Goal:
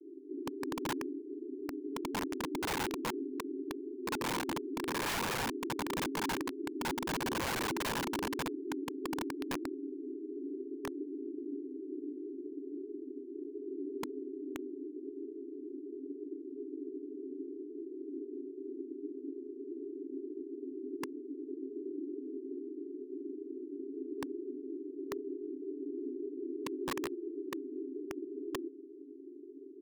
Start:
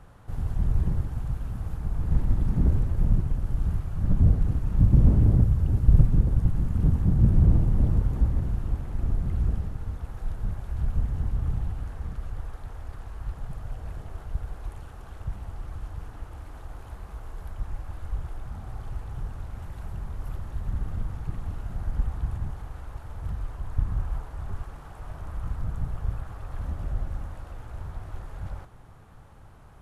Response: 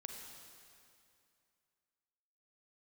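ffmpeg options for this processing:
-af "asetrate=27781,aresample=44100,atempo=1.5874,asuperpass=centerf=330:order=20:qfactor=2.1,aeval=exprs='(mod(224*val(0)+1,2)-1)/224':c=same,volume=7.08"

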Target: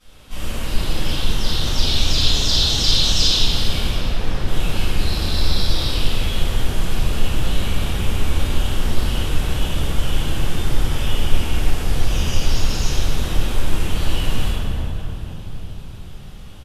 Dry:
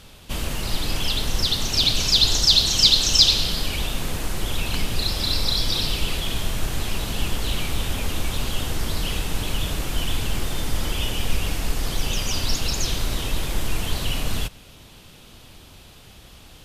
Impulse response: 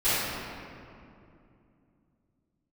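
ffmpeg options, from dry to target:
-filter_complex "[0:a]asettb=1/sr,asplit=3[s0][s1][s2];[s0]atrim=end=3.874[s3];[s1]atrim=start=3.87:end=4.47,asetpts=PTS-STARTPTS,afade=t=in:d=0.004:c=qsin,afade=t=out:st=0.596:d=0.004:c=qsin,acrossover=split=3200[s4][s5];[s5]acompressor=threshold=0.00447:ratio=4:attack=1:release=60[s6];[s4][s6]amix=inputs=2:normalize=0[s7];[s2]atrim=start=4.466[s8];[s3][s7]acrossfade=d=0.004:c1=hsin:c2=qsin[s9];[s9][s8]acrossfade=d=0.004:c1=qsin:c2=hsin,asplit=6[s10][s11][s12][s13][s14][s15];[s11]adelay=377,afreqshift=34,volume=0.133[s16];[s12]adelay=754,afreqshift=68,volume=0.0759[s17];[s13]adelay=1131,afreqshift=102,volume=0.0432[s18];[s14]adelay=1508,afreqshift=136,volume=0.0248[s19];[s15]adelay=1885,afreqshift=170,volume=0.0141[s20];[s10][s16][s17][s18][s19][s20]amix=inputs=6:normalize=0[s21];[1:a]atrim=start_sample=2205,asetrate=28665,aresample=44100[s22];[s21][s22]afir=irnorm=-1:irlink=0,volume=0.15"

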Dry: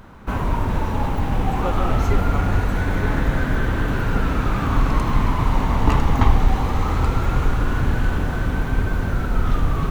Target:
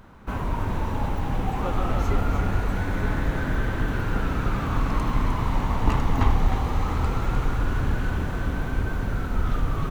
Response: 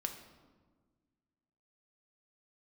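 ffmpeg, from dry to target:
-af "aecho=1:1:306:0.422,volume=0.531"

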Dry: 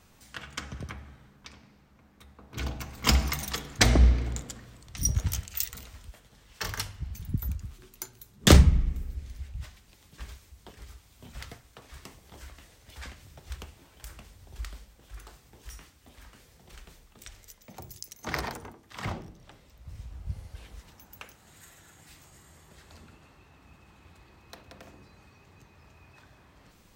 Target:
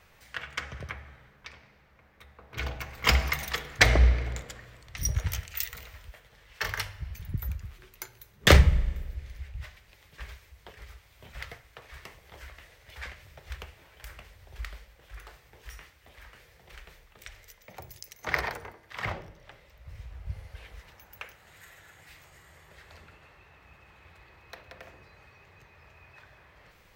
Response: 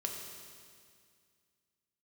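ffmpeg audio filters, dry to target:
-filter_complex "[0:a]equalizer=f=250:t=o:w=1:g=-10,equalizer=f=500:t=o:w=1:g=5,equalizer=f=2000:t=o:w=1:g=8,equalizer=f=8000:t=o:w=1:g=-6,asplit=2[s0][s1];[1:a]atrim=start_sample=2205,asetrate=66150,aresample=44100[s2];[s1][s2]afir=irnorm=-1:irlink=0,volume=0.178[s3];[s0][s3]amix=inputs=2:normalize=0,volume=0.841"

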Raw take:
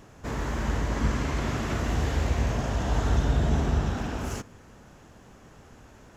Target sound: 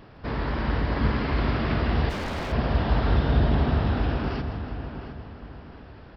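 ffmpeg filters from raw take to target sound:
-filter_complex "[0:a]asplit=2[s0][s1];[s1]adelay=712,lowpass=f=2400:p=1,volume=0.355,asplit=2[s2][s3];[s3]adelay=712,lowpass=f=2400:p=1,volume=0.36,asplit=2[s4][s5];[s5]adelay=712,lowpass=f=2400:p=1,volume=0.36,asplit=2[s6][s7];[s7]adelay=712,lowpass=f=2400:p=1,volume=0.36[s8];[s2][s4][s6][s8]amix=inputs=4:normalize=0[s9];[s0][s9]amix=inputs=2:normalize=0,aresample=11025,aresample=44100,asplit=2[s10][s11];[s11]aecho=0:1:164|328|492|656|820|984|1148:0.282|0.163|0.0948|0.055|0.0319|0.0185|0.0107[s12];[s10][s12]amix=inputs=2:normalize=0,asplit=3[s13][s14][s15];[s13]afade=t=out:st=2.09:d=0.02[s16];[s14]aeval=exprs='0.0422*(abs(mod(val(0)/0.0422+3,4)-2)-1)':c=same,afade=t=in:st=2.09:d=0.02,afade=t=out:st=2.51:d=0.02[s17];[s15]afade=t=in:st=2.51:d=0.02[s18];[s16][s17][s18]amix=inputs=3:normalize=0,volume=1.33"

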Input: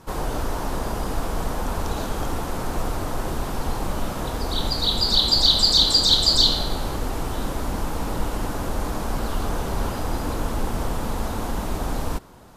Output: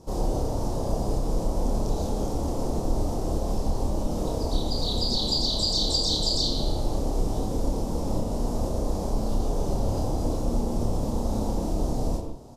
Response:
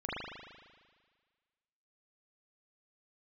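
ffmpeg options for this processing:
-filter_complex "[0:a]firequalizer=gain_entry='entry(600,0);entry(1500,-21);entry(5300,-1);entry(13000,-11)':delay=0.05:min_phase=1,acompressor=threshold=0.0562:ratio=2.5,asplit=2[s0][s1];[s1]adelay=29,volume=0.75[s2];[s0][s2]amix=inputs=2:normalize=0,asplit=2[s3][s4];[1:a]atrim=start_sample=2205,atrim=end_sample=3528,adelay=84[s5];[s4][s5]afir=irnorm=-1:irlink=0,volume=0.447[s6];[s3][s6]amix=inputs=2:normalize=0"

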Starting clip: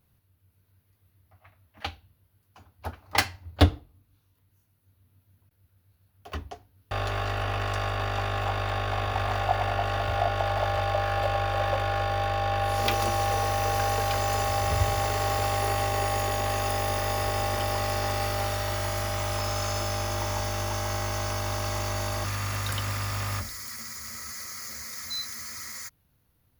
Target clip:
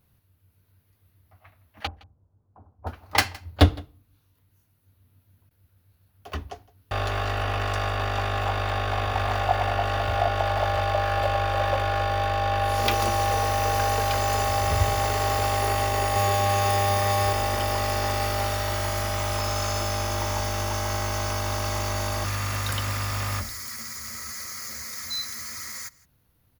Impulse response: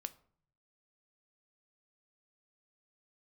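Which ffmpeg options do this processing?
-filter_complex "[0:a]asettb=1/sr,asplit=3[s0][s1][s2];[s0]atrim=end=1.874[s3];[s1]atrim=start=1.87:end=2.87,asetpts=PTS-STARTPTS,afade=t=in:d=0.004:c=qsin,afade=t=out:st=0.996:d=0.004:c=qsin,lowpass=f=1000:w=0.5412,lowpass=f=1000:w=1.3066[s4];[s2]atrim=start=2.866[s5];[s3][s4]acrossfade=d=0.004:c1=hsin:c2=qsin[s6];[s6][s5]acrossfade=d=0.004:c1=qsin:c2=hsin,asettb=1/sr,asplit=3[s7][s8][s9];[s7]atrim=end=16.134[s10];[s8]atrim=start=16.13:end=17.33,asetpts=PTS-STARTPTS,afade=t=in:d=0.004:c=qsin,afade=t=out:st=1.196:d=0.004:c=qsin,asplit=2[s11][s12];[s12]adelay=30,volume=0.631[s13];[s11][s13]amix=inputs=2:normalize=0,atrim=end_sample=52920[s14];[s9]atrim=start=17.326[s15];[s10][s14]acrossfade=d=0.004:c1=hsin:c2=qsin[s16];[s16][s15]acrossfade=d=0.004:c1=qsin:c2=hsin,aecho=1:1:164:0.0708,volume=1.33"

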